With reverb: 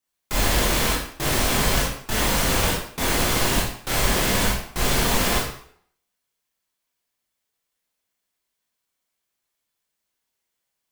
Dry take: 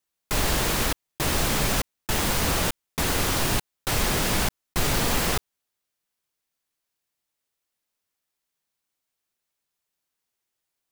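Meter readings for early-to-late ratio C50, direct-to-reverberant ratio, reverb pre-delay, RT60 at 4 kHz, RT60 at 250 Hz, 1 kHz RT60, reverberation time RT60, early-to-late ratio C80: 2.5 dB, −5.0 dB, 20 ms, 0.50 s, 0.55 s, 0.65 s, 0.60 s, 7.0 dB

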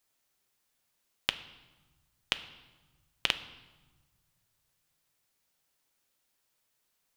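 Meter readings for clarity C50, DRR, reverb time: 14.0 dB, 10.0 dB, 1.2 s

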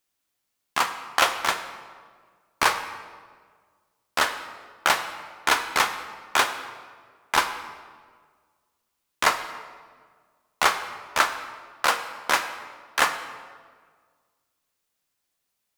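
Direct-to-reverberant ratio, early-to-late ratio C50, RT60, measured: 7.5 dB, 10.0 dB, 1.7 s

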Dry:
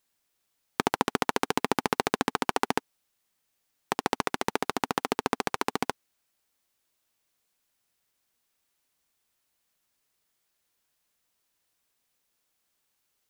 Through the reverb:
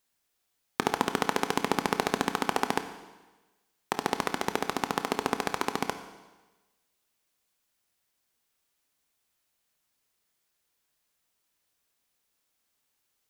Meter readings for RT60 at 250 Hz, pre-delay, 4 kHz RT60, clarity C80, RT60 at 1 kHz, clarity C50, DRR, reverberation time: 1.2 s, 19 ms, 1.2 s, 12.0 dB, 1.2 s, 10.0 dB, 8.5 dB, 1.2 s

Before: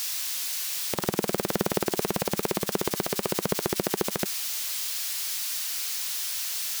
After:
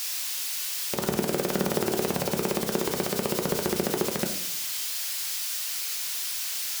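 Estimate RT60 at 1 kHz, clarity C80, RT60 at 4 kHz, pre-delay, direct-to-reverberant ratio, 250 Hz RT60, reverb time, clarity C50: 0.60 s, 12.0 dB, 0.45 s, 5 ms, 2.5 dB, 0.85 s, 0.70 s, 8.5 dB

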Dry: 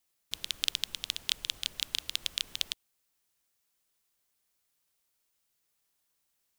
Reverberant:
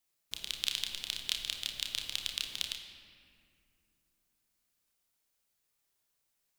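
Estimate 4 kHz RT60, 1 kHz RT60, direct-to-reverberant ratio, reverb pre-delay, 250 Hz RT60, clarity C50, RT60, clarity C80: 1.4 s, 2.1 s, 2.0 dB, 29 ms, 3.8 s, 6.0 dB, 2.4 s, 7.0 dB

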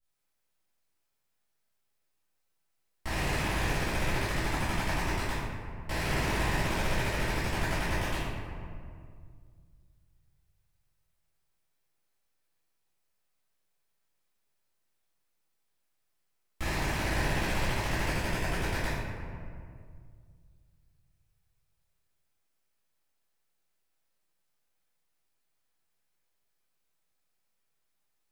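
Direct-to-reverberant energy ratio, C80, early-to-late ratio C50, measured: −19.0 dB, 0.0 dB, −3.0 dB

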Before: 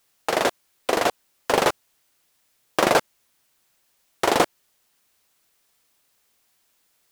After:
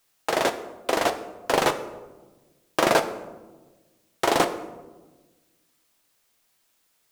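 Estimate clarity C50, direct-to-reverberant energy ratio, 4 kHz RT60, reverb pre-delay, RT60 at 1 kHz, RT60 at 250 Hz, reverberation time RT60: 12.0 dB, 8.0 dB, 0.65 s, 3 ms, 1.1 s, 1.7 s, 1.2 s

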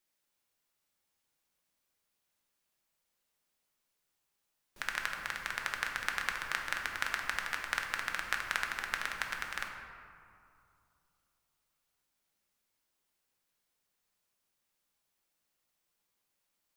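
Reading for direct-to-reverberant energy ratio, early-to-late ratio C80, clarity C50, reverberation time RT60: 1.0 dB, 5.0 dB, 3.5 dB, 2.5 s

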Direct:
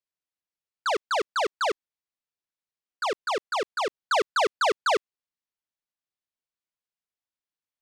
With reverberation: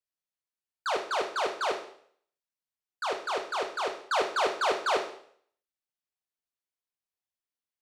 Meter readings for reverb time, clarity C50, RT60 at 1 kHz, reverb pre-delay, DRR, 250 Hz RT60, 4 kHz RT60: 0.60 s, 7.5 dB, 0.60 s, 13 ms, 2.5 dB, 0.55 s, 0.60 s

